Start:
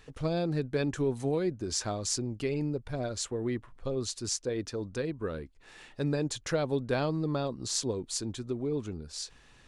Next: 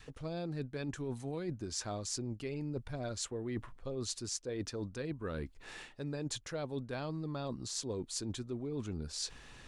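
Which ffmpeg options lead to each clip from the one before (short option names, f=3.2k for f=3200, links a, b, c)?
-af "adynamicequalizer=threshold=0.00562:dfrequency=450:dqfactor=1.5:tfrequency=450:tqfactor=1.5:attack=5:release=100:ratio=0.375:range=2.5:mode=cutabove:tftype=bell,areverse,acompressor=threshold=-40dB:ratio=12,areverse,volume=4.5dB"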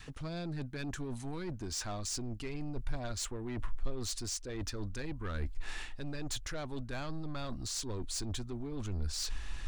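-af "equalizer=f=490:w=2.1:g=-8,asoftclip=type=tanh:threshold=-38.5dB,asubboost=boost=8:cutoff=53,volume=5.5dB"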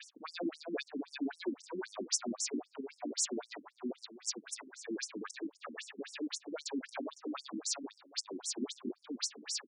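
-filter_complex "[0:a]alimiter=level_in=10dB:limit=-24dB:level=0:latency=1:release=178,volume=-10dB,asplit=2[a][b];[b]aecho=0:1:350|700|1050:0.668|0.127|0.0241[c];[a][c]amix=inputs=2:normalize=0,afftfilt=real='re*between(b*sr/1024,250*pow(7700/250,0.5+0.5*sin(2*PI*3.8*pts/sr))/1.41,250*pow(7700/250,0.5+0.5*sin(2*PI*3.8*pts/sr))*1.41)':imag='im*between(b*sr/1024,250*pow(7700/250,0.5+0.5*sin(2*PI*3.8*pts/sr))/1.41,250*pow(7700/250,0.5+0.5*sin(2*PI*3.8*pts/sr))*1.41)':win_size=1024:overlap=0.75,volume=10dB"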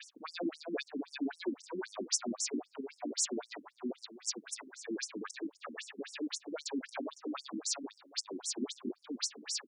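-af "acontrast=21,volume=-4dB"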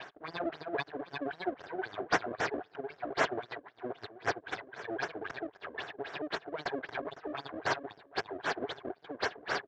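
-af "aexciter=amount=3.4:drive=5.5:freq=2.1k,aeval=exprs='max(val(0),0)':c=same,highpass=140,equalizer=f=220:t=q:w=4:g=-8,equalizer=f=410:t=q:w=4:g=8,equalizer=f=700:t=q:w=4:g=9,equalizer=f=1k:t=q:w=4:g=3,equalizer=f=1.6k:t=q:w=4:g=10,equalizer=f=2.6k:t=q:w=4:g=-5,lowpass=f=3.2k:w=0.5412,lowpass=f=3.2k:w=1.3066,volume=2dB"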